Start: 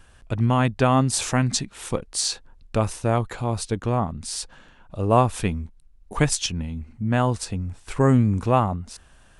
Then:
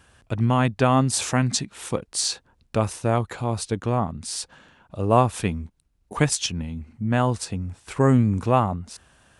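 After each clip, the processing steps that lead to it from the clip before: high-pass 74 Hz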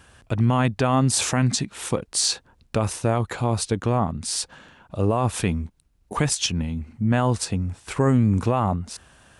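peak limiter -15.5 dBFS, peak gain reduction 11.5 dB; trim +4 dB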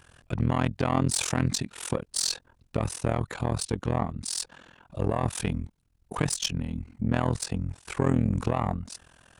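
single-diode clipper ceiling -14 dBFS; AM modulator 42 Hz, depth 95%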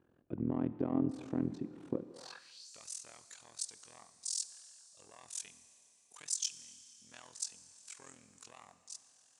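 Schroeder reverb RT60 3.3 s, combs from 26 ms, DRR 13 dB; band-pass sweep 310 Hz -> 6.8 kHz, 2.07–2.70 s; trim -1.5 dB

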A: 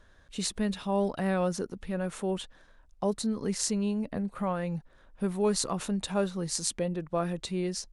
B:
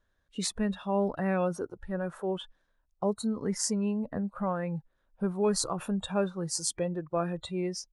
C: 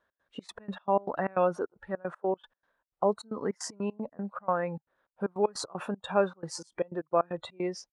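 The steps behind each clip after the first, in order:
spectral noise reduction 16 dB
trance gate "x.xx.x.x.x.xx.xx" 154 bpm -24 dB; band-pass filter 950 Hz, Q 0.65; trim +6.5 dB

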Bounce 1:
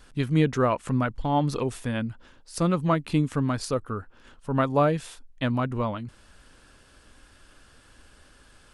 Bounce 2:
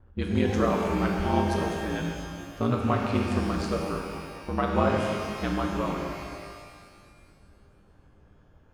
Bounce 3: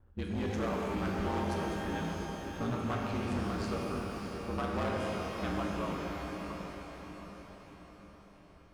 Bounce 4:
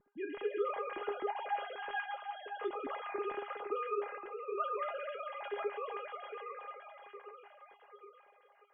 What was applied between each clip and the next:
ring modulator 57 Hz; level-controlled noise filter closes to 730 Hz, open at -23.5 dBFS; pitch-shifted reverb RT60 2 s, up +12 st, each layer -8 dB, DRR 0.5 dB; trim -1 dB
overload inside the chain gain 22.5 dB; echo that smears into a reverb 634 ms, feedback 50%, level -6 dB; trim -7 dB
formants replaced by sine waves; feedback comb 410 Hz, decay 0.16 s, harmonics all, mix 90%; trim +6.5 dB

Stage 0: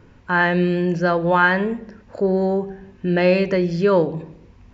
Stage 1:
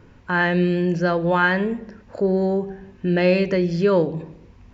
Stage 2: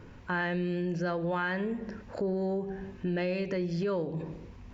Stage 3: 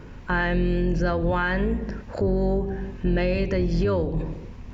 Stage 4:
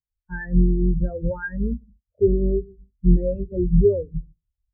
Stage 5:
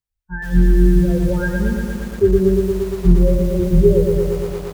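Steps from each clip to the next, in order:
dynamic bell 1 kHz, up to -4 dB, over -29 dBFS, Q 0.83
transient shaper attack -6 dB, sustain +1 dB; compression 6:1, threshold -29 dBFS, peak gain reduction 14.5 dB
octave divider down 2 oct, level +1 dB; trim +6.5 dB
spectral contrast expander 4:1; trim +7.5 dB
delay 314 ms -16 dB; bit-crushed delay 116 ms, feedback 80%, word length 7-bit, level -4 dB; trim +3.5 dB

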